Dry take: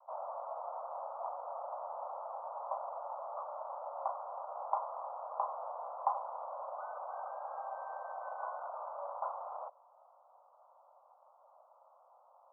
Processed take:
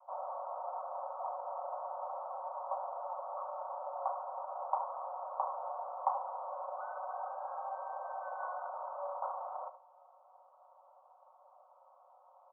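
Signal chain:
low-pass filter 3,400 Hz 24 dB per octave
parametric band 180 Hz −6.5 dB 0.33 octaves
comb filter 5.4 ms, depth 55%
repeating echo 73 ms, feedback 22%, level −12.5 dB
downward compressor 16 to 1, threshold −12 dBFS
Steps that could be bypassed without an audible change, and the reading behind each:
low-pass filter 3,400 Hz: nothing at its input above 1,600 Hz
parametric band 180 Hz: nothing at its input below 450 Hz
downward compressor, threshold −12 dBFS: peak of its input −17.5 dBFS

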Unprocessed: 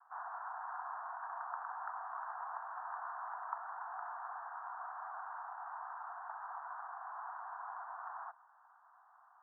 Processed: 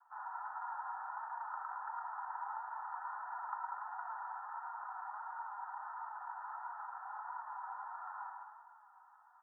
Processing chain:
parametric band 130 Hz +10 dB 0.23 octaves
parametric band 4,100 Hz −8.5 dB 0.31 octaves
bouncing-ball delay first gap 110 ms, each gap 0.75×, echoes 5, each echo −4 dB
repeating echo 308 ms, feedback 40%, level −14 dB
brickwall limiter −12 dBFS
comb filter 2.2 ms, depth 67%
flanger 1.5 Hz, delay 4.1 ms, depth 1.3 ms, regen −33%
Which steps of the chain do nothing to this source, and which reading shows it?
parametric band 130 Hz: nothing at its input below 570 Hz
parametric band 4,100 Hz: nothing at its input above 1,900 Hz
brickwall limiter −12 dBFS: peak of its input −24.0 dBFS

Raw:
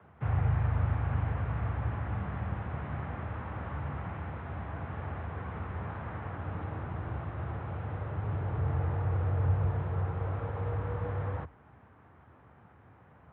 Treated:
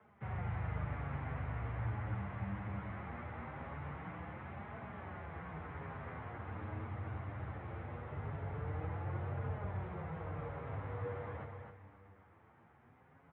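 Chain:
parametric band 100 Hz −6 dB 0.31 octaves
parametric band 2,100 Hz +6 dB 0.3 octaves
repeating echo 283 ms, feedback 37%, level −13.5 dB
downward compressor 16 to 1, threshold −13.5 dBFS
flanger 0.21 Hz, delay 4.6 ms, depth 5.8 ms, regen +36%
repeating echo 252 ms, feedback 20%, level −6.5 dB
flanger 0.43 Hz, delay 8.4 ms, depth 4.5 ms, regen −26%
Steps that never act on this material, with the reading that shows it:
downward compressor, threshold −13.5 dBFS: peak of its input −20.0 dBFS

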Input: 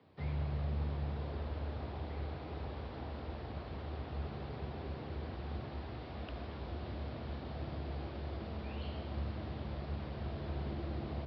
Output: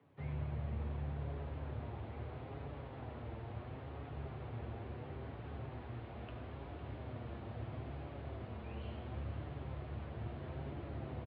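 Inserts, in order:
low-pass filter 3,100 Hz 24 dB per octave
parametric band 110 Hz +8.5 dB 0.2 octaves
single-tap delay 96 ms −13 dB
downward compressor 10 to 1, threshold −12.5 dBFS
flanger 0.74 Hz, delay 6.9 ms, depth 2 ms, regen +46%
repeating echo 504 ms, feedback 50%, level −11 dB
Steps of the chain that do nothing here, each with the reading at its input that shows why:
downward compressor, threshold −12.5 dBFS: peak of its input −25.5 dBFS

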